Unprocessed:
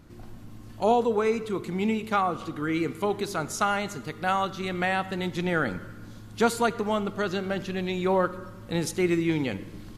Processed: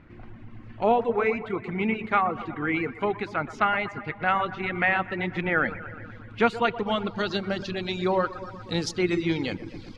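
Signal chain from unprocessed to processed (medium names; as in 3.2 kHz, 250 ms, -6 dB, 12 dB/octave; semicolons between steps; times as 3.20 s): feedback echo behind a low-pass 121 ms, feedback 63%, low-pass 2.4 kHz, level -9.5 dB; low-pass sweep 2.2 kHz -> 4.7 kHz, 6.25–7.51 s; reverb removal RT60 0.64 s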